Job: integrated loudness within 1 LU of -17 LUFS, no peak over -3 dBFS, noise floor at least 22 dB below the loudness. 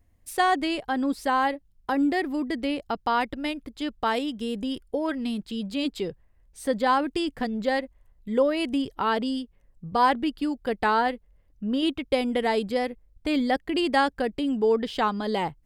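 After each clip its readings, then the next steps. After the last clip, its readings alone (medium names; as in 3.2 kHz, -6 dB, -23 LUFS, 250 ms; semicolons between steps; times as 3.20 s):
loudness -26.5 LUFS; peak level -10.5 dBFS; loudness target -17.0 LUFS
-> trim +9.5 dB; peak limiter -3 dBFS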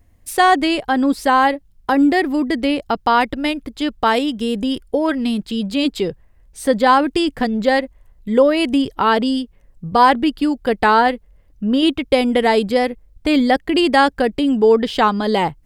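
loudness -17.0 LUFS; peak level -3.0 dBFS; noise floor -53 dBFS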